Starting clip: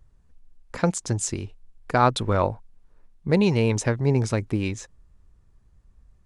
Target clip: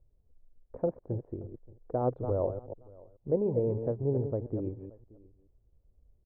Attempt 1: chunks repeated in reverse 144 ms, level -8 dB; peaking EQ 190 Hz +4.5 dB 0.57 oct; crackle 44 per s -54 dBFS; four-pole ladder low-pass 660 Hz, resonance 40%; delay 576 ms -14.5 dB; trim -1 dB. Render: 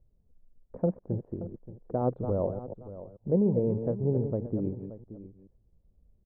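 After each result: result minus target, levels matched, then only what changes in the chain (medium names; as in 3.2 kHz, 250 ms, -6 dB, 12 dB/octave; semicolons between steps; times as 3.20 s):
echo-to-direct +9 dB; 250 Hz band +3.5 dB
change: delay 576 ms -23.5 dB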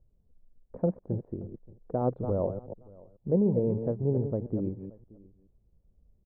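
250 Hz band +3.5 dB
change: peaking EQ 190 Hz -7 dB 0.57 oct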